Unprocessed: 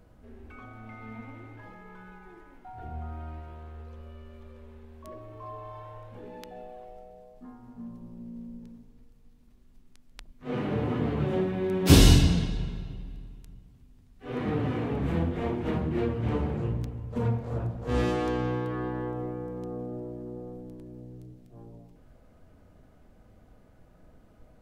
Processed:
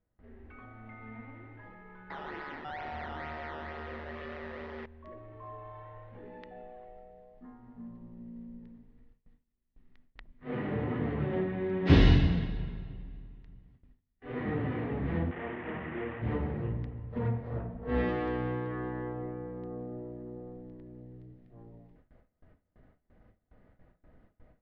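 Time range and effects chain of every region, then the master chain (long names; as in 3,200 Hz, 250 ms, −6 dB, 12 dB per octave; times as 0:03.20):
0:02.10–0:04.86: sample-and-hold swept by an LFO 14× 2.2 Hz + mid-hump overdrive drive 36 dB, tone 5,200 Hz, clips at −26.5 dBFS + amplitude modulation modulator 150 Hz, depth 50%
0:15.31–0:16.22: linear delta modulator 16 kbit/s, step −27.5 dBFS + high-pass filter 1,000 Hz 6 dB per octave + spectral tilt −3 dB per octave
0:17.61–0:18.09: high-shelf EQ 7,100 Hz −10 dB + comb filter 4.5 ms, depth 56% + one half of a high-frequency compander decoder only
whole clip: Bessel low-pass filter 2,600 Hz, order 6; parametric band 1,900 Hz +10 dB 0.24 octaves; noise gate with hold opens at −46 dBFS; level −4 dB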